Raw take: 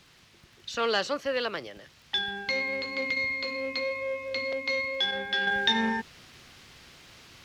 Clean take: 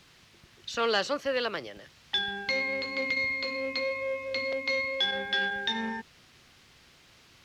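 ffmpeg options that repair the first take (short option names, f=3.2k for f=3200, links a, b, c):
-af "adeclick=t=4,asetnsamples=n=441:p=0,asendcmd='5.47 volume volume -6dB',volume=0dB"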